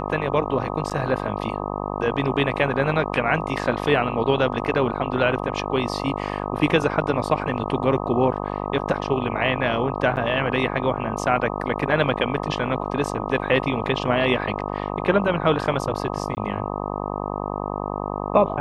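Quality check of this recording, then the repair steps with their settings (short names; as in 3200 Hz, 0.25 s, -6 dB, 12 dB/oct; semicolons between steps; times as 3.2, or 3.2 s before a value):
buzz 50 Hz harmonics 25 -28 dBFS
0.9–0.91 gap 7.3 ms
10.16–10.17 gap 8.8 ms
16.35–16.37 gap 19 ms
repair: de-hum 50 Hz, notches 25; interpolate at 0.9, 7.3 ms; interpolate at 10.16, 8.8 ms; interpolate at 16.35, 19 ms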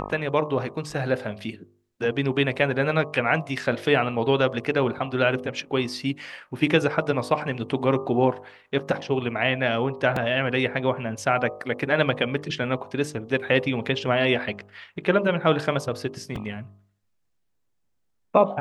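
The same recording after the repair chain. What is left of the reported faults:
none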